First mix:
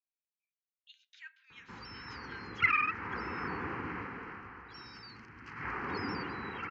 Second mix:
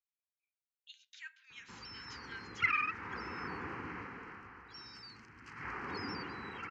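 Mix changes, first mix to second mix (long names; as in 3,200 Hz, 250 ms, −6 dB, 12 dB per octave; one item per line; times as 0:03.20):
background −5.0 dB
master: remove high-frequency loss of the air 130 metres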